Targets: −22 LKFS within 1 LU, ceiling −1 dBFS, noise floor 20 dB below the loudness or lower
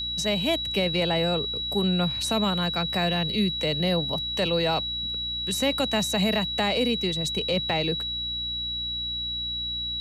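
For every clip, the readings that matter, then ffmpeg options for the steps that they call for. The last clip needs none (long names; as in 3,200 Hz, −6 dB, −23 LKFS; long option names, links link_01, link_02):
mains hum 60 Hz; hum harmonics up to 300 Hz; level of the hum −40 dBFS; interfering tone 3,900 Hz; level of the tone −28 dBFS; integrated loudness −25.0 LKFS; sample peak −13.0 dBFS; target loudness −22.0 LKFS
→ -af "bandreject=frequency=60:width_type=h:width=4,bandreject=frequency=120:width_type=h:width=4,bandreject=frequency=180:width_type=h:width=4,bandreject=frequency=240:width_type=h:width=4,bandreject=frequency=300:width_type=h:width=4"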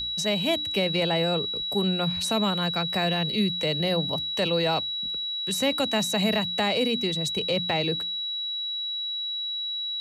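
mains hum none found; interfering tone 3,900 Hz; level of the tone −28 dBFS
→ -af "bandreject=frequency=3900:width=30"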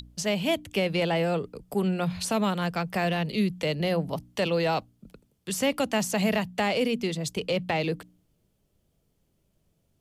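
interfering tone none found; integrated loudness −27.5 LKFS; sample peak −14.5 dBFS; target loudness −22.0 LKFS
→ -af "volume=5.5dB"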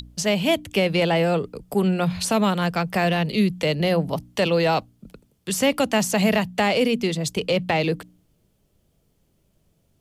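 integrated loudness −22.0 LKFS; sample peak −9.0 dBFS; background noise floor −66 dBFS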